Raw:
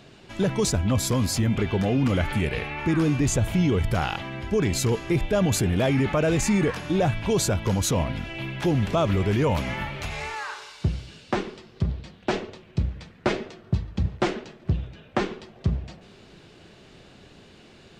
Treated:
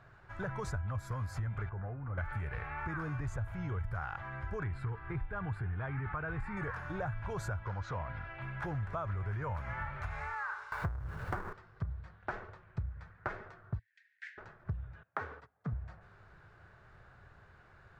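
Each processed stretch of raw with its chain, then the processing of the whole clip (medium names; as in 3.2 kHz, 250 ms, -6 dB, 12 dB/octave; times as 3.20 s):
1.69–2.18 s: low-pass 1.3 kHz + level held to a coarse grid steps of 10 dB
4.63–6.57 s: boxcar filter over 7 samples + peaking EQ 580 Hz -11 dB 0.38 oct
7.63–8.42 s: inverse Chebyshev low-pass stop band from 11 kHz, stop band 50 dB + bass shelf 170 Hz -7.5 dB
10.72–11.53 s: square wave that keeps the level + tilt shelf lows +3.5 dB, about 1.2 kHz + upward compressor, threshold -18 dBFS
13.79–14.38 s: steep high-pass 1.7 kHz 96 dB/octave + treble shelf 3.1 kHz -8 dB
15.03–15.73 s: gate -43 dBFS, range -19 dB + frequency shift +59 Hz
whole clip: FFT filter 110 Hz 0 dB, 240 Hz -20 dB, 1.5 kHz +4 dB, 2.9 kHz -20 dB; compression, threshold -31 dBFS; trim -3 dB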